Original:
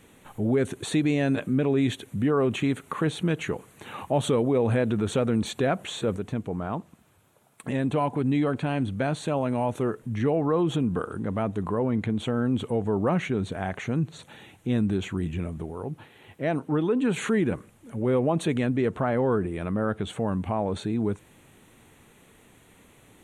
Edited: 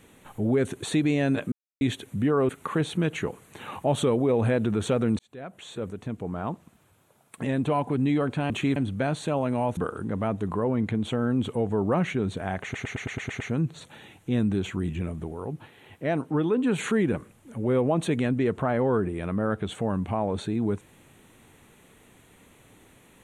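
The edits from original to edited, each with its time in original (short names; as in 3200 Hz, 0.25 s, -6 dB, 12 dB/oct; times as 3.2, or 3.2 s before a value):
1.52–1.81 mute
2.49–2.75 move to 8.76
5.45–6.77 fade in
9.77–10.92 cut
13.78 stutter 0.11 s, 8 plays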